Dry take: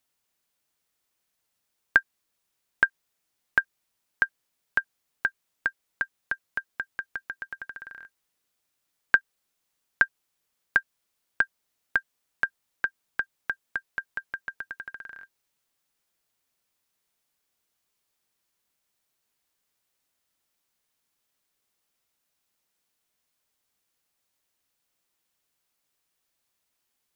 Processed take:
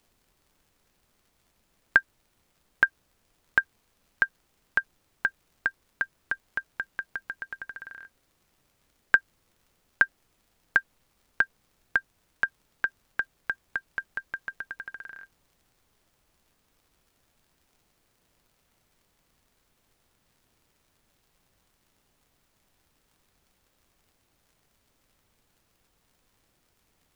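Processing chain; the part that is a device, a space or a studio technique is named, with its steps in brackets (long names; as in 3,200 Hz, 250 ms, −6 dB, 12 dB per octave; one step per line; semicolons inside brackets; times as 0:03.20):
vinyl LP (surface crackle; pink noise bed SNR 35 dB)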